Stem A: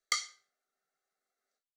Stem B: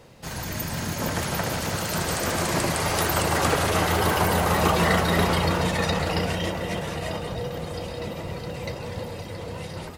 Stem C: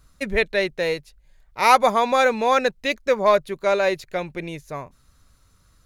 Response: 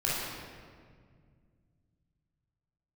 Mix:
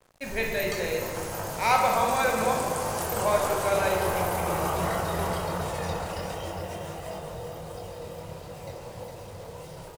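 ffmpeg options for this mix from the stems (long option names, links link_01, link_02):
-filter_complex "[0:a]adelay=600,volume=-8dB[link_01];[1:a]equalizer=frequency=125:width_type=o:width=1:gain=-4,equalizer=frequency=250:width_type=o:width=1:gain=-9,equalizer=frequency=2000:width_type=o:width=1:gain=-8,equalizer=frequency=4000:width_type=o:width=1:gain=-8,flanger=delay=20:depth=7.1:speed=1.4,volume=-2.5dB,asplit=3[link_02][link_03][link_04];[link_03]volume=-16.5dB[link_05];[link_04]volume=-6dB[link_06];[2:a]volume=-13.5dB,asplit=3[link_07][link_08][link_09];[link_07]atrim=end=2.53,asetpts=PTS-STARTPTS,afade=type=out:start_time=2.526:duration=0.004:curve=hsin[link_10];[link_08]atrim=start=2.53:end=3.12,asetpts=PTS-STARTPTS,volume=0[link_11];[link_09]atrim=start=3.12,asetpts=PTS-STARTPTS,afade=type=in:duration=0.004:curve=hsin[link_12];[link_10][link_11][link_12]concat=n=3:v=0:a=1,asplit=2[link_13][link_14];[link_14]volume=-4dB[link_15];[3:a]atrim=start_sample=2205[link_16];[link_05][link_15]amix=inputs=2:normalize=0[link_17];[link_17][link_16]afir=irnorm=-1:irlink=0[link_18];[link_06]aecho=0:1:407:1[link_19];[link_01][link_02][link_13][link_18][link_19]amix=inputs=5:normalize=0,acrusher=bits=7:mix=0:aa=0.5,equalizer=frequency=68:width=1.3:gain=-5.5"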